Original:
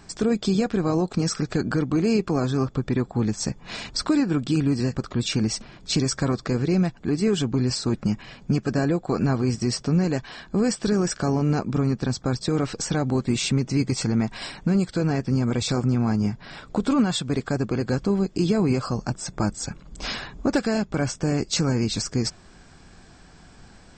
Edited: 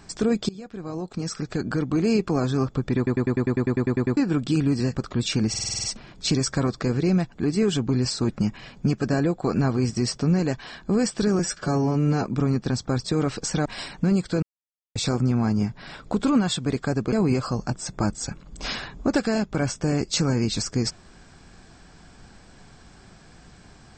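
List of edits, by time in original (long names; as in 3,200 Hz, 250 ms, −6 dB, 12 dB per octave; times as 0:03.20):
0:00.49–0:02.10: fade in linear, from −22 dB
0:02.97: stutter in place 0.10 s, 12 plays
0:05.49: stutter 0.05 s, 8 plays
0:11.04–0:11.61: time-stretch 1.5×
0:13.02–0:14.29: remove
0:15.06–0:15.59: silence
0:17.76–0:18.52: remove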